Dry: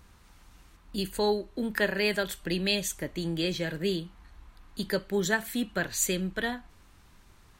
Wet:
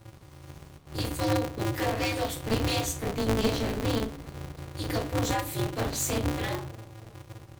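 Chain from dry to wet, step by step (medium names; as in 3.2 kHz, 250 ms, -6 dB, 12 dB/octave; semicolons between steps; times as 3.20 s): peaking EQ 1.6 kHz -12.5 dB 0.4 oct; in parallel at -5.5 dB: bit crusher 8-bit; on the sum: saturation -23 dBFS, distortion -11 dB; on a send: feedback echo behind a band-pass 304 ms, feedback 72%, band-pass 580 Hz, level -22 dB; on the sum: simulated room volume 120 m³, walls furnished, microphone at 2.8 m; polarity switched at an audio rate 110 Hz; trim -7 dB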